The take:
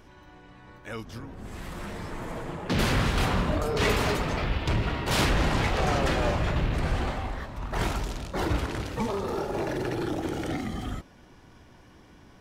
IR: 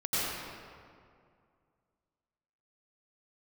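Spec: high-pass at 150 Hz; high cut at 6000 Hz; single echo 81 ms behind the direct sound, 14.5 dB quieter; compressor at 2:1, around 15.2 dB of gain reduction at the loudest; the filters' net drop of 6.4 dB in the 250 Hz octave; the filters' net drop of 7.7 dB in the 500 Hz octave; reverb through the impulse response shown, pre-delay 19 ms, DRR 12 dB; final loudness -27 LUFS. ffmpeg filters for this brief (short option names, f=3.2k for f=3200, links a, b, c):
-filter_complex "[0:a]highpass=150,lowpass=6k,equalizer=f=250:t=o:g=-5,equalizer=f=500:t=o:g=-8.5,acompressor=threshold=-53dB:ratio=2,aecho=1:1:81:0.188,asplit=2[a][b];[1:a]atrim=start_sample=2205,adelay=19[c];[b][c]afir=irnorm=-1:irlink=0,volume=-21.5dB[d];[a][d]amix=inputs=2:normalize=0,volume=18.5dB"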